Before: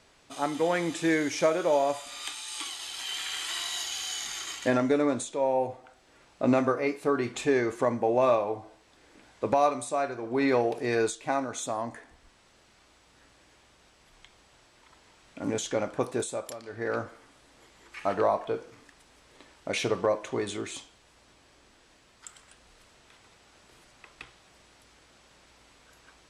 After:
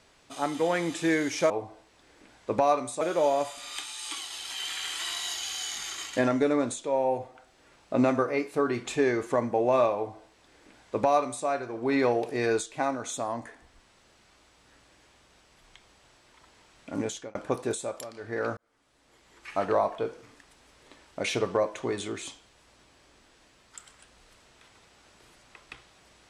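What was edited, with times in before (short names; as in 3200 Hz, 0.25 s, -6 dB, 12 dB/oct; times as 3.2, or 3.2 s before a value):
8.44–9.95 copy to 1.5
15.49–15.84 fade out
17.06–18.03 fade in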